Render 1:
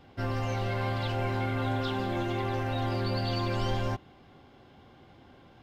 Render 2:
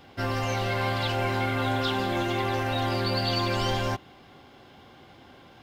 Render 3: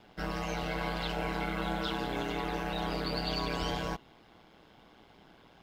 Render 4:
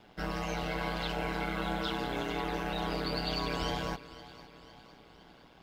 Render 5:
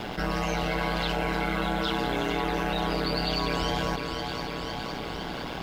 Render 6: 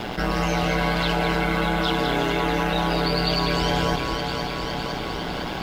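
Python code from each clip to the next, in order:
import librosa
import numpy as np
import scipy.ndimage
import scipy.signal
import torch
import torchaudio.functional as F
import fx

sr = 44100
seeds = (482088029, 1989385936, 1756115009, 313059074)

y1 = fx.tilt_eq(x, sr, slope=1.5)
y1 = y1 * 10.0 ** (5.5 / 20.0)
y2 = y1 * np.sin(2.0 * np.pi * 60.0 * np.arange(len(y1)) / sr)
y2 = y2 * 10.0 ** (-4.0 / 20.0)
y3 = fx.echo_feedback(y2, sr, ms=508, feedback_pct=52, wet_db=-17)
y4 = fx.env_flatten(y3, sr, amount_pct=70)
y4 = y4 * 10.0 ** (4.5 / 20.0)
y5 = y4 + 10.0 ** (-6.5 / 20.0) * np.pad(y4, (int(206 * sr / 1000.0), 0))[:len(y4)]
y5 = y5 * 10.0 ** (4.5 / 20.0)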